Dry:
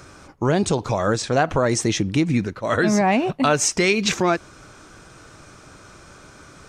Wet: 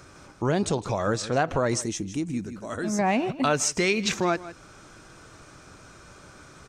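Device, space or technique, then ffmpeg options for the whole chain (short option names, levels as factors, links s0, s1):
ducked delay: -filter_complex "[0:a]asettb=1/sr,asplit=3[s0][s1][s2];[s0]atrim=end=1.824[s3];[s1]atrim=start=1.82:end=2.99,asetpts=PTS-STARTPTS,afade=t=in:d=0.004:c=qsin,afade=t=out:st=1.166:d=0.004:c=qsin,equalizer=f=125:t=o:w=1:g=-9,equalizer=f=500:t=o:w=1:g=-7,equalizer=f=1000:t=o:w=1:g=-5,equalizer=f=2000:t=o:w=1:g=-9,equalizer=f=4000:t=o:w=1:g=-8,equalizer=f=8000:t=o:w=1:g=5[s4];[s2]atrim=start=2.986[s5];[s3][s4]acrossfade=d=0.004:c1=hsin:c2=qsin[s6];[s6][s5]acrossfade=d=0.004:c1=qsin:c2=hsin,asplit=3[s7][s8][s9];[s8]adelay=157,volume=0.668[s10];[s9]apad=whole_len=301765[s11];[s10][s11]sidechaincompress=threshold=0.0224:ratio=8:attack=8.9:release=270[s12];[s7][s12]amix=inputs=2:normalize=0,volume=0.562"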